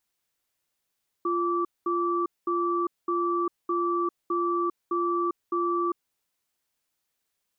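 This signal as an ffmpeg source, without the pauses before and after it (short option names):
-f lavfi -i "aevalsrc='0.0501*(sin(2*PI*347*t)+sin(2*PI*1160*t))*clip(min(mod(t,0.61),0.4-mod(t,0.61))/0.005,0,1)':d=4.87:s=44100"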